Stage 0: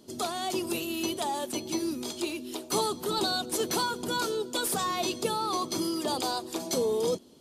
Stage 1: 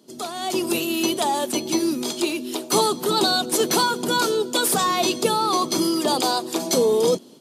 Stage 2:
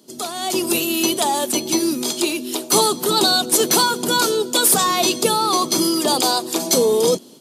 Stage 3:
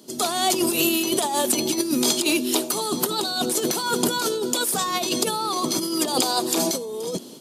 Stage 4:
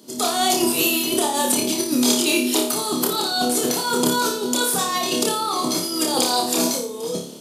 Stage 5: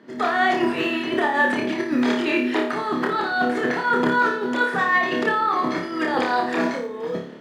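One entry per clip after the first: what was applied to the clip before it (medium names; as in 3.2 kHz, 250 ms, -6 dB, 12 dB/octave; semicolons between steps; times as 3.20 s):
high-pass 130 Hz 24 dB/octave; level rider gain up to 9 dB
treble shelf 5 kHz +7 dB; trim +2 dB
peak limiter -9 dBFS, peak gain reduction 7.5 dB; compressor with a negative ratio -22 dBFS, ratio -0.5
flutter echo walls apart 4.9 m, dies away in 0.47 s
resonant low-pass 1.8 kHz, resonance Q 7; short-mantissa float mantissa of 6-bit; trim -1 dB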